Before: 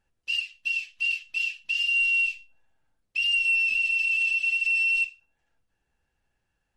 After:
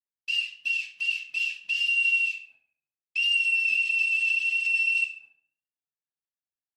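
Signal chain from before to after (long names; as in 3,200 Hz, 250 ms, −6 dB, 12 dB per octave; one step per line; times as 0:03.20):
high-pass filter 120 Hz 24 dB per octave
downward expander −52 dBFS
in parallel at +1 dB: brickwall limiter −26 dBFS, peak gain reduction 7.5 dB
on the sum: flanger 0.56 Hz, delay 9.8 ms, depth 4.6 ms, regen −56%
tape delay 68 ms, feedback 49%, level −12 dB, low-pass 3,600 Hz
on a send at −13 dB: convolution reverb RT60 0.55 s, pre-delay 7 ms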